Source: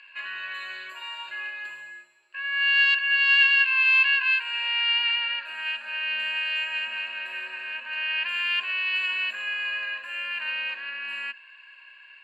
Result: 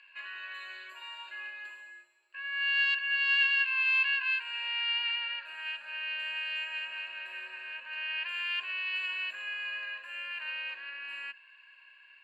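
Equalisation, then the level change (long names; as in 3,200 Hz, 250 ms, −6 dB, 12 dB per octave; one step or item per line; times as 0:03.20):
high-pass filter 270 Hz 24 dB per octave
−7.5 dB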